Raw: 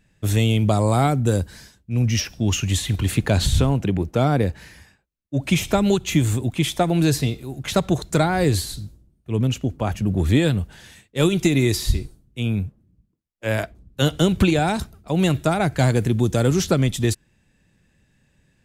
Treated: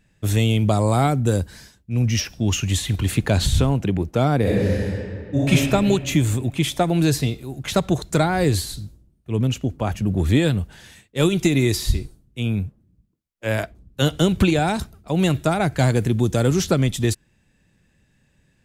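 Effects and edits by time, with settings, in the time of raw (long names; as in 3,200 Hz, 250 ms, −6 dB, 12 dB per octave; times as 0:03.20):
0:04.41–0:05.49: thrown reverb, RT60 2.3 s, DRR −8 dB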